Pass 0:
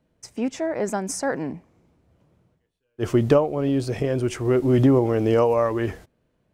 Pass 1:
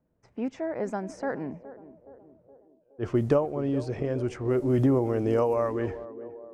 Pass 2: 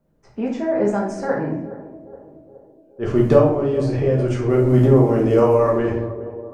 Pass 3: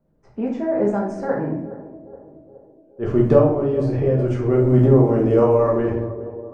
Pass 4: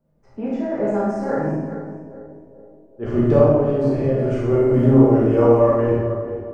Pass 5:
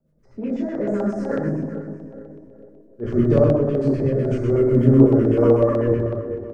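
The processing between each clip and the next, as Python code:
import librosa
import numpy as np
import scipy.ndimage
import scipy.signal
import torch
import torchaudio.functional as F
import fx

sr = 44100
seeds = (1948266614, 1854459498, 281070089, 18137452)

y1 = fx.env_lowpass(x, sr, base_hz=1400.0, full_db=-15.0)
y1 = fx.dynamic_eq(y1, sr, hz=3400.0, q=1.2, threshold_db=-48.0, ratio=4.0, max_db=-7)
y1 = fx.echo_banded(y1, sr, ms=419, feedback_pct=59, hz=460.0, wet_db=-14.0)
y1 = y1 * 10.0 ** (-5.5 / 20.0)
y2 = fx.room_shoebox(y1, sr, seeds[0], volume_m3=130.0, walls='mixed', distance_m=1.2)
y2 = y2 * 10.0 ** (4.5 / 20.0)
y3 = fx.high_shelf(y2, sr, hz=2100.0, db=-10.5)
y4 = fx.reverse_delay_fb(y3, sr, ms=219, feedback_pct=43, wet_db=-11.0)
y4 = fx.rev_schroeder(y4, sr, rt60_s=0.68, comb_ms=26, drr_db=-2.0)
y4 = y4 * 10.0 ** (-3.0 / 20.0)
y5 = fx.filter_lfo_notch(y4, sr, shape='square', hz=8.0, low_hz=780.0, high_hz=2800.0, q=1.0)
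y5 = fx.rotary(y5, sr, hz=8.0)
y5 = fx.echo_feedback(y5, sr, ms=404, feedback_pct=40, wet_db=-23)
y5 = y5 * 10.0 ** (1.5 / 20.0)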